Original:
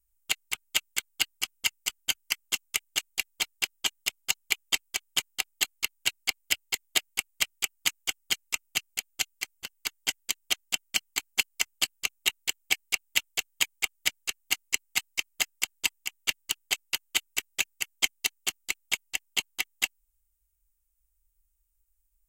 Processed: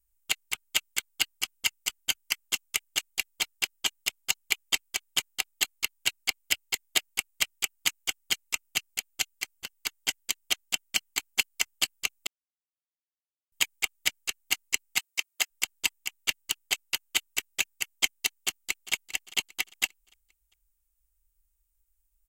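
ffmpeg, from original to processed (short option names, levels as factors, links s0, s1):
-filter_complex "[0:a]asplit=3[s0][s1][s2];[s0]afade=t=out:st=14.98:d=0.02[s3];[s1]highpass=380,afade=t=in:st=14.98:d=0.02,afade=t=out:st=15.5:d=0.02[s4];[s2]afade=t=in:st=15.5:d=0.02[s5];[s3][s4][s5]amix=inputs=3:normalize=0,asplit=2[s6][s7];[s7]afade=t=in:st=18.37:d=0.01,afade=t=out:st=18.93:d=0.01,aecho=0:1:400|800|1200|1600:0.149624|0.0673306|0.0302988|0.0136344[s8];[s6][s8]amix=inputs=2:normalize=0,asplit=3[s9][s10][s11];[s9]atrim=end=12.27,asetpts=PTS-STARTPTS,afade=t=out:st=12.266:d=0.004:c=hsin[s12];[s10]atrim=start=12.27:end=13.52,asetpts=PTS-STARTPTS,volume=0[s13];[s11]atrim=start=13.52,asetpts=PTS-STARTPTS,afade=t=in:d=0.004:c=hsin[s14];[s12][s13][s14]concat=n=3:v=0:a=1"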